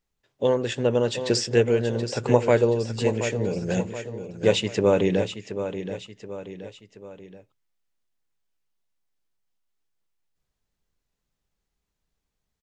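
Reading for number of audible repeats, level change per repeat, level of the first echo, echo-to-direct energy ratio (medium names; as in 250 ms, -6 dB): 3, -6.5 dB, -10.0 dB, -9.0 dB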